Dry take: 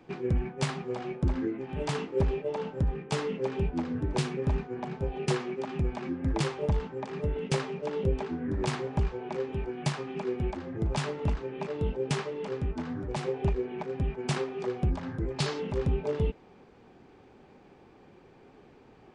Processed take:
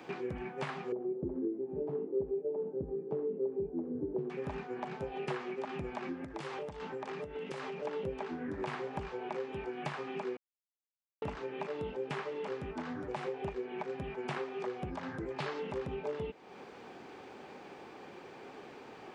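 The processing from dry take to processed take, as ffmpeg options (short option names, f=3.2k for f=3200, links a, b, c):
-filter_complex "[0:a]asettb=1/sr,asplit=3[a][b][c];[a]atrim=end=0.924[d];[b]atrim=start=0.92:end=4.3,asetpts=PTS-STARTPTS,afade=t=in:d=0.004:c=qsin,afade=t=out:st=3.376:d=0.004:c=qsin,lowpass=f=390:t=q:w=3.2[e];[c]atrim=start=4.296[f];[d][e]acrossfade=d=0.004:c1=hsin:c2=qsin[g];[g][f]acrossfade=d=0.004:c1=qsin:c2=hsin,asettb=1/sr,asplit=3[h][i][j];[h]atrim=end=6.244[k];[i]atrim=start=6.24:end=7.85,asetpts=PTS-STARTPTS,afade=t=in:d=0.004:c=qsin,afade=t=out:st=1.606:d=0.004:c=qsin,acompressor=threshold=-35dB:ratio=12:attack=3.2:release=140:knee=1:detection=peak[l];[j]atrim=start=7.846[m];[k][l]acrossfade=d=0.004:c1=hsin:c2=qsin[n];[n][m]acrossfade=d=0.004:c1=qsin:c2=hsin,asplit=3[o][p][q];[o]atrim=end=10.37,asetpts=PTS-STARTPTS,afade=t=out:st=10.366:d=0.004:c=hsin[r];[p]atrim=start=10.37:end=11.22,asetpts=PTS-STARTPTS,volume=0[s];[q]atrim=start=11.22,asetpts=PTS-STARTPTS,afade=t=in:d=0.004:c=hsin[t];[r][s][t]concat=n=3:v=0:a=1,acrossover=split=2700[u][v];[v]acompressor=threshold=-57dB:ratio=4:attack=1:release=60[w];[u][w]amix=inputs=2:normalize=0,highpass=f=540:p=1,acompressor=threshold=-51dB:ratio=2.5,volume=10dB"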